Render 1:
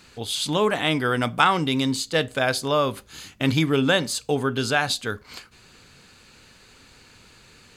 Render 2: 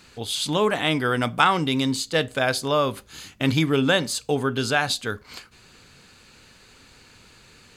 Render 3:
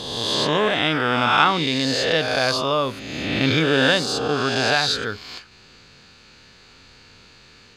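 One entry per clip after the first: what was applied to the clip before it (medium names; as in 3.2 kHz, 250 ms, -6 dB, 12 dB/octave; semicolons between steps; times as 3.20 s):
no audible change
reverse spectral sustain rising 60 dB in 1.55 s; resonant high shelf 7.1 kHz -10 dB, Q 1.5; trim -1.5 dB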